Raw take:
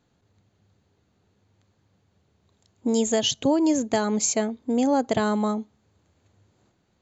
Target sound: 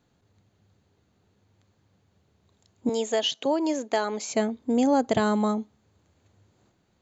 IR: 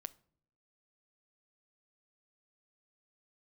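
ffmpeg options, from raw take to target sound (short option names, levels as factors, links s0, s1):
-filter_complex "[0:a]asettb=1/sr,asplit=3[s0][s1][s2];[s0]atrim=end=2.894[s3];[s1]atrim=start=2.89:end=4.3,asetpts=PTS-STARTPTS,afade=t=in:d=0.004:c=qsin,afade=t=out:st=1.406:d=0.004:c=qsin,highpass=410,lowpass=5700[s4];[s2]atrim=start=4.296[s5];[s3][s4]acrossfade=d=0.004:c1=hsin:c2=qsin[s6];[s6][s5]acrossfade=d=0.004:c1=qsin:c2=hsin,acrossover=split=4000[s7][s8];[s8]acompressor=threshold=0.0178:ratio=4:attack=1:release=60[s9];[s7][s9]amix=inputs=2:normalize=0"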